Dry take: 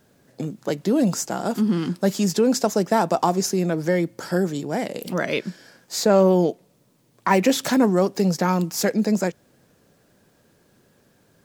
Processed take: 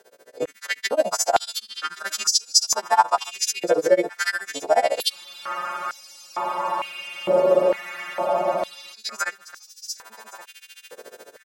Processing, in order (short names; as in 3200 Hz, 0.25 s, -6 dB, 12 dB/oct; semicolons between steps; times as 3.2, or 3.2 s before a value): frequency quantiser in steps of 2 st; high shelf 5500 Hz -11 dB; AGC gain up to 12 dB; in parallel at -0.5 dB: limiter -12 dBFS, peak gain reduction 11 dB; on the sum: compressor 2:1, threshold -23 dBFS, peak gain reduction 10 dB; tremolo 14 Hz, depth 97%; on a send: echo 1.121 s -16.5 dB; on the sum: spectral freeze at 5.13, 3.80 s; stepped high-pass 2.2 Hz 480–5300 Hz